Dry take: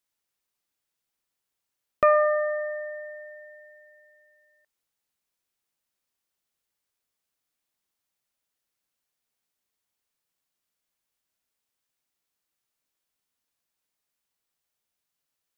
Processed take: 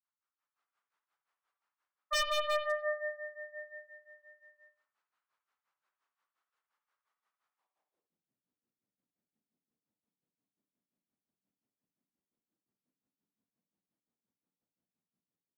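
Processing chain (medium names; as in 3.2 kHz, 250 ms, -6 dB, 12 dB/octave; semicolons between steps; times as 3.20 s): level rider gain up to 14 dB; band-pass sweep 1.2 kHz -> 220 Hz, 7.57–8.15 s; granulator 156 ms, grains 5.7 per s, pitch spread up and down by 0 st; wavefolder -24.5 dBFS; reverberation, pre-delay 52 ms, DRR 7 dB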